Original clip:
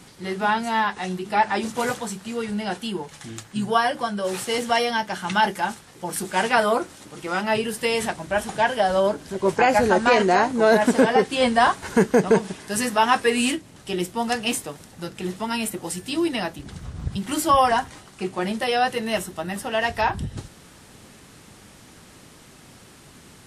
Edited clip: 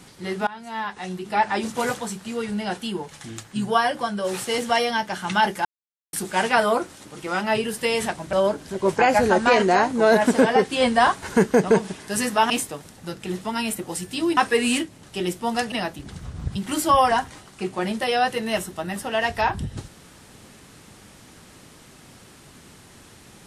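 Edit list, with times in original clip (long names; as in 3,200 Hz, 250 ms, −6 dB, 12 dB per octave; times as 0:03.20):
0:00.47–0:01.81: fade in equal-power, from −22 dB
0:05.65–0:06.13: silence
0:08.33–0:08.93: remove
0:13.10–0:14.45: move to 0:16.32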